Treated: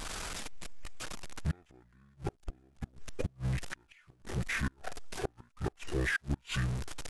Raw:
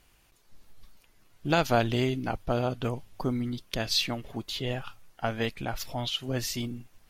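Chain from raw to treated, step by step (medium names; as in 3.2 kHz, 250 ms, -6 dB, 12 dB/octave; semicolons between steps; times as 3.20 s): jump at every zero crossing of -31 dBFS; inverted gate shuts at -19 dBFS, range -35 dB; pitch shift -11 st; trim -2 dB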